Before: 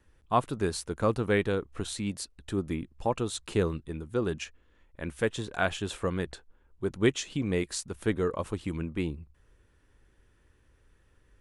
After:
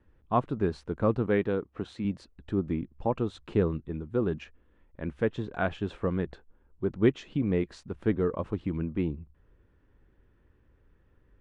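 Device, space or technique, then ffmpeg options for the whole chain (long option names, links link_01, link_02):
phone in a pocket: -filter_complex "[0:a]lowpass=3900,equalizer=frequency=210:width_type=o:width=1.6:gain=3.5,highshelf=frequency=2200:gain=-11,asettb=1/sr,asplit=3[link_01][link_02][link_03];[link_01]atrim=end=1.264[link_04];[link_02]atrim=start=1.26:end=2.05,asetpts=PTS-STARTPTS,afade=type=in:duration=0.004:curve=qsin,afade=type=out:start_time=0.786:duration=0.004:curve=qsin,highpass=frequency=150:poles=1[link_05];[link_03]atrim=start=2.046[link_06];[link_04][link_05]acrossfade=duration=0.004:curve1=hsin:curve2=qsin[link_07];[link_07][link_06]acrossfade=duration=0.004:curve1=qsin:curve2=hsin"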